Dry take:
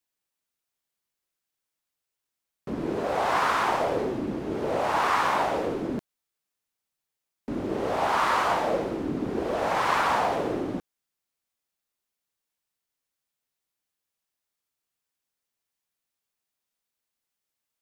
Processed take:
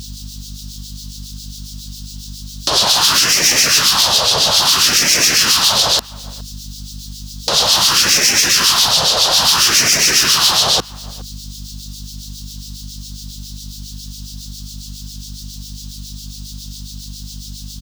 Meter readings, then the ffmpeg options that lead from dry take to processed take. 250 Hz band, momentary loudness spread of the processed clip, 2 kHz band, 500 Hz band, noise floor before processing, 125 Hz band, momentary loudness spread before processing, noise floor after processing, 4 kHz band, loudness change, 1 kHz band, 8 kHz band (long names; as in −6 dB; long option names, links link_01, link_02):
+2.0 dB, 6 LU, +13.0 dB, +2.0 dB, below −85 dBFS, +12.0 dB, 10 LU, −32 dBFS, +29.5 dB, +16.0 dB, +4.0 dB, +33.5 dB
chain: -filter_complex "[0:a]acrossover=split=190|1200|4800[link_01][link_02][link_03][link_04];[link_03]aexciter=amount=15.5:drive=8.8:freq=3500[link_05];[link_01][link_02][link_05][link_04]amix=inputs=4:normalize=0,acrossover=split=4300[link_06][link_07];[link_07]acompressor=threshold=-34dB:ratio=4:attack=1:release=60[link_08];[link_06][link_08]amix=inputs=2:normalize=0,afftfilt=real='re*lt(hypot(re,im),0.0794)':imag='im*lt(hypot(re,im),0.0794)':win_size=1024:overlap=0.75,highpass=99,equalizer=frequency=1100:width=2:gain=4,asoftclip=type=tanh:threshold=-29.5dB,crystalizer=i=2.5:c=0,aeval=exprs='val(0)+0.00112*(sin(2*PI*50*n/s)+sin(2*PI*2*50*n/s)/2+sin(2*PI*3*50*n/s)/3+sin(2*PI*4*50*n/s)/4+sin(2*PI*5*50*n/s)/5)':channel_layout=same,acompressor=threshold=-44dB:ratio=2.5,acrossover=split=2200[link_09][link_10];[link_09]aeval=exprs='val(0)*(1-0.7/2+0.7/2*cos(2*PI*7.3*n/s))':channel_layout=same[link_11];[link_10]aeval=exprs='val(0)*(1-0.7/2-0.7/2*cos(2*PI*7.3*n/s))':channel_layout=same[link_12];[link_11][link_12]amix=inputs=2:normalize=0,asplit=2[link_13][link_14];[link_14]adelay=414,volume=-21dB,highshelf=frequency=4000:gain=-9.32[link_15];[link_13][link_15]amix=inputs=2:normalize=0,alimiter=level_in=33dB:limit=-1dB:release=50:level=0:latency=1,volume=-1dB"